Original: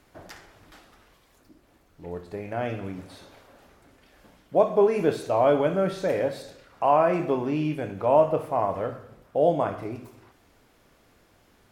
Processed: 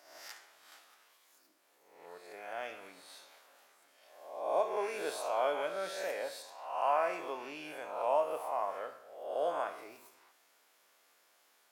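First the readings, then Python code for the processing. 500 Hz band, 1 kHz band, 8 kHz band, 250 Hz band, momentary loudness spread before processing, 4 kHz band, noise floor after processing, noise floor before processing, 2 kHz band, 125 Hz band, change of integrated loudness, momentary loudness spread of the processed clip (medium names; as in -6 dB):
-12.0 dB, -8.0 dB, no reading, -22.5 dB, 17 LU, -3.0 dB, -69 dBFS, -61 dBFS, -5.0 dB, under -30 dB, -11.0 dB, 20 LU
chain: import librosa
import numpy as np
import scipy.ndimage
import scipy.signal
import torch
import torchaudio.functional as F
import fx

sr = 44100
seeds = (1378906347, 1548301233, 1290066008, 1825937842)

y = fx.spec_swells(x, sr, rise_s=0.82)
y = scipy.signal.sosfilt(scipy.signal.butter(2, 700.0, 'highpass', fs=sr, output='sos'), y)
y = fx.high_shelf(y, sr, hz=4700.0, db=7.5)
y = y * 10.0 ** (-9.0 / 20.0)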